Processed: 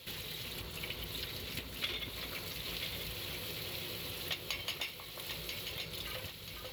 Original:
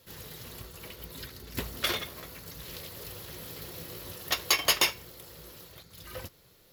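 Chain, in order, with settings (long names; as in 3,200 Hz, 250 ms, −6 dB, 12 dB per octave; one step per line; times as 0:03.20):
downward compressor 16 to 1, threshold −46 dBFS, peak gain reduction 27.5 dB
flat-topped bell 3,000 Hz +9.5 dB 1.2 octaves
delay that swaps between a low-pass and a high-pass 493 ms, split 1,500 Hz, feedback 64%, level −2 dB
level +4 dB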